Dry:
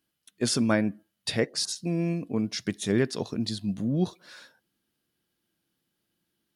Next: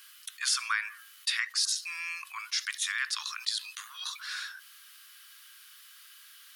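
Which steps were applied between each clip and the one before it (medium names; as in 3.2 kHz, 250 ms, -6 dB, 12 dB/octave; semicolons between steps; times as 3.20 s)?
steep high-pass 1.1 kHz 72 dB/octave; level flattener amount 50%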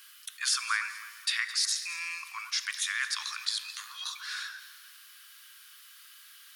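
echo whose repeats swap between lows and highs 107 ms, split 1.9 kHz, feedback 60%, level -11 dB; Schroeder reverb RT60 2.3 s, combs from 29 ms, DRR 14.5 dB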